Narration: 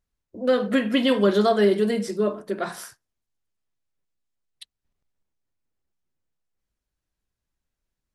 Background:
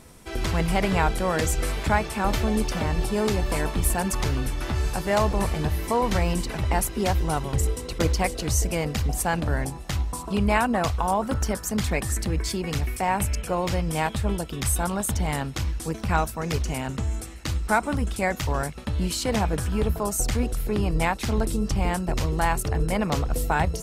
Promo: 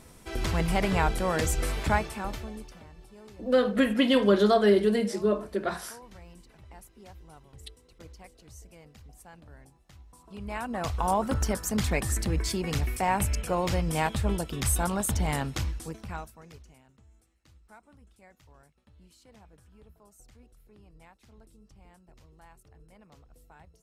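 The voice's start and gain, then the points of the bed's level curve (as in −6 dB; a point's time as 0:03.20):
3.05 s, −2.0 dB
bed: 0:01.95 −3 dB
0:02.93 −26 dB
0:10.02 −26 dB
0:11.07 −2 dB
0:15.58 −2 dB
0:16.89 −31.5 dB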